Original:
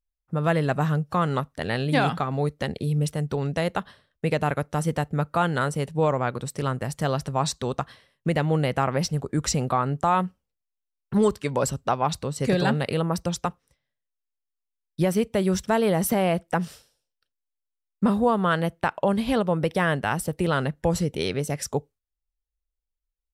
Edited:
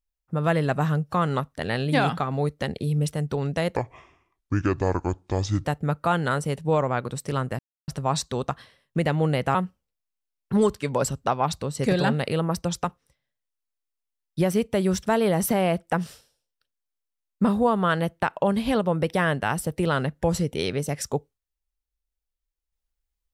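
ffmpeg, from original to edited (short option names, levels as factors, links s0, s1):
-filter_complex "[0:a]asplit=6[s0][s1][s2][s3][s4][s5];[s0]atrim=end=3.764[s6];[s1]atrim=start=3.76:end=4.95,asetpts=PTS-STARTPTS,asetrate=27783,aresample=44100[s7];[s2]atrim=start=4.946:end=6.89,asetpts=PTS-STARTPTS,afade=t=out:st=1.94:d=0.004:c=hsin[s8];[s3]atrim=start=6.89:end=7.18,asetpts=PTS-STARTPTS,volume=0[s9];[s4]atrim=start=7.18:end=8.852,asetpts=PTS-STARTPTS,afade=t=in:d=0.004:c=hsin[s10];[s5]atrim=start=10.158[s11];[s6][s7]acrossfade=d=0.004:c1=hsin:c2=hsin[s12];[s8][s9][s10]concat=n=3:v=0:a=1[s13];[s12][s13]acrossfade=d=0.004:c1=hsin:c2=hsin[s14];[s14][s11]acrossfade=d=0.004:c1=hsin:c2=hsin"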